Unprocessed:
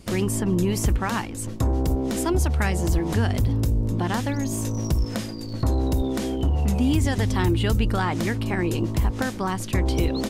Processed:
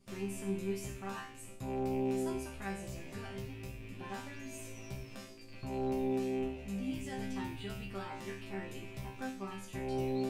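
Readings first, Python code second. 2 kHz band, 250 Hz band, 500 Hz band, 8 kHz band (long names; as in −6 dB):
−15.0 dB, −14.0 dB, −9.5 dB, −17.5 dB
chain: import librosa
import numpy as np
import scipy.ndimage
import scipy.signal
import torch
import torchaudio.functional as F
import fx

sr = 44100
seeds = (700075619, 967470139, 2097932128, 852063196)

y = fx.rattle_buzz(x, sr, strikes_db=-31.0, level_db=-25.0)
y = fx.resonator_bank(y, sr, root=48, chord='fifth', decay_s=0.51)
y = F.gain(torch.from_numpy(y), -1.5).numpy()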